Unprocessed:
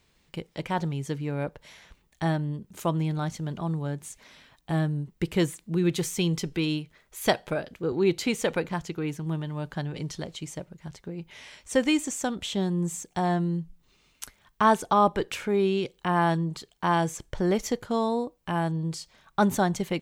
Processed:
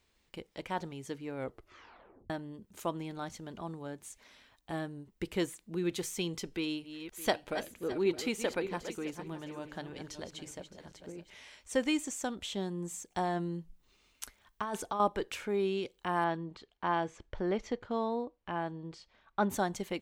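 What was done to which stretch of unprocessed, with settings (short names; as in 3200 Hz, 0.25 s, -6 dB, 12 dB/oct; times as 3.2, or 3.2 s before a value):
1.36 tape stop 0.94 s
6.52–11.35 regenerating reverse delay 0.307 s, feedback 43%, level -9.5 dB
13.1–15 negative-ratio compressor -25 dBFS
16.24–19.5 LPF 3300 Hz
whole clip: bell 150 Hz -13 dB 0.43 oct; gain -6.5 dB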